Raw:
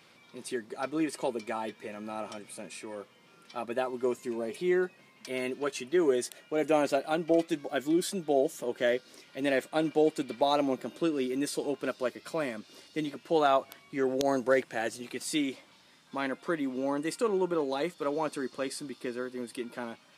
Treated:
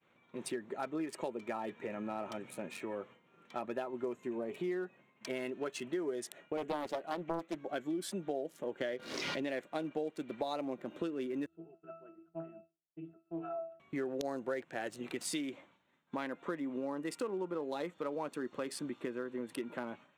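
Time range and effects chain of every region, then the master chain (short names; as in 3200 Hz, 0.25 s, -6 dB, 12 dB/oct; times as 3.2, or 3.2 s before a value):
6.57–7.61 de-hum 216.2 Hz, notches 2 + Doppler distortion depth 0.44 ms
8.81–9.5 brick-wall FIR low-pass 6800 Hz + backwards sustainer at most 37 dB/s
11.46–13.8 octave resonator E, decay 0.44 s + de-hum 120.4 Hz, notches 11 + Doppler distortion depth 0.17 ms
whole clip: Wiener smoothing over 9 samples; compressor 5:1, threshold -38 dBFS; expander -53 dBFS; gain +2.5 dB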